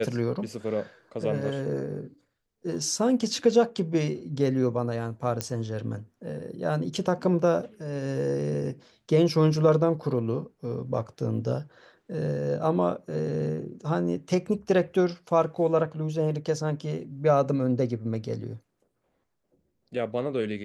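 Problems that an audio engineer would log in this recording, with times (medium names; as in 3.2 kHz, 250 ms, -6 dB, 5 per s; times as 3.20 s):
5.41 s: pop -12 dBFS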